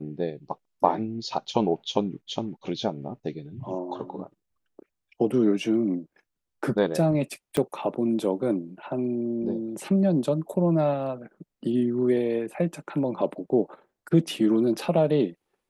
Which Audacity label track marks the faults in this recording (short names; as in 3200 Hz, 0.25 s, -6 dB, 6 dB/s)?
7.570000	7.570000	pop -12 dBFS